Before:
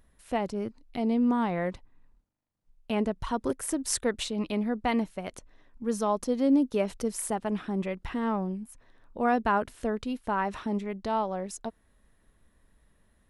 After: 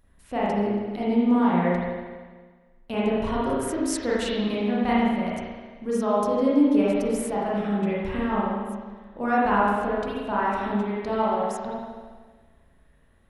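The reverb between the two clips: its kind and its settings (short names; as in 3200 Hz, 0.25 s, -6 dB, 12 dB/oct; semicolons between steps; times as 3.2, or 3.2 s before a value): spring tank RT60 1.5 s, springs 34/45 ms, chirp 50 ms, DRR -7.5 dB; gain -2.5 dB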